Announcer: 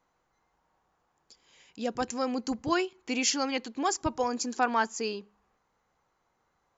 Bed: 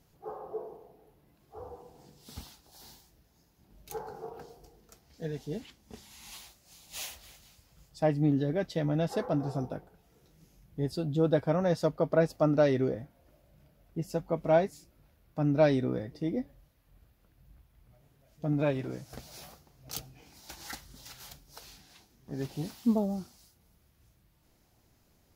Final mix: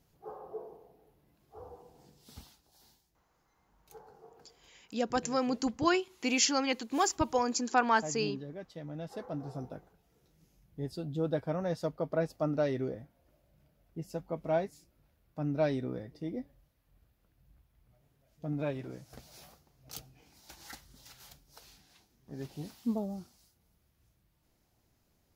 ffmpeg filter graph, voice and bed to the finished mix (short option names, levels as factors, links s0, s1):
-filter_complex "[0:a]adelay=3150,volume=1[s0];[1:a]volume=1.5,afade=t=out:st=2.08:d=0.91:silence=0.334965,afade=t=in:st=8.87:d=0.94:silence=0.421697[s1];[s0][s1]amix=inputs=2:normalize=0"